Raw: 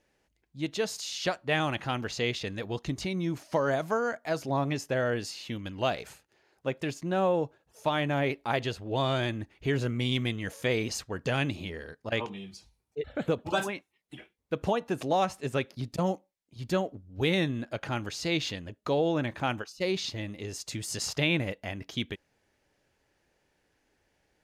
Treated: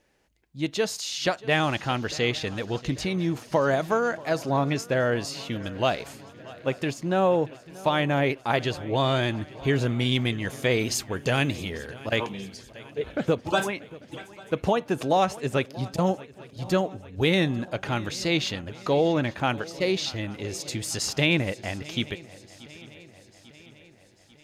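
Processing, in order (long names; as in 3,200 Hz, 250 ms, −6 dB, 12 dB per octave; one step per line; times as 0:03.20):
0:10.79–0:12.32: high-shelf EQ 8,600 Hz +9 dB
feedback echo with a long and a short gap by turns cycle 844 ms, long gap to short 3 to 1, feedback 55%, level −20 dB
level +4.5 dB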